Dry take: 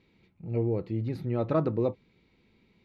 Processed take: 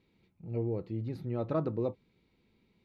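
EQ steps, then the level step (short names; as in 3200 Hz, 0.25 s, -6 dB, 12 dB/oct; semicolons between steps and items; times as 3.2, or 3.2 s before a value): bell 2100 Hz -3 dB 0.85 oct; -5.0 dB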